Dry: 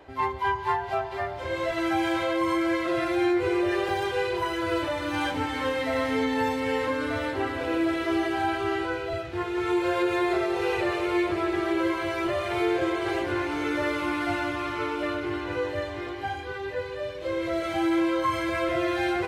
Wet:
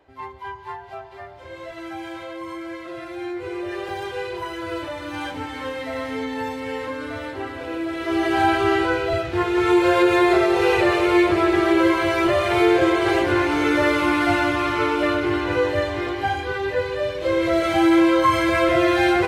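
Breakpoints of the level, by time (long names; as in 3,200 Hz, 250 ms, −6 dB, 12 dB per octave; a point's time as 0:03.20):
0:03.08 −8 dB
0:04.00 −2 dB
0:07.89 −2 dB
0:08.39 +8.5 dB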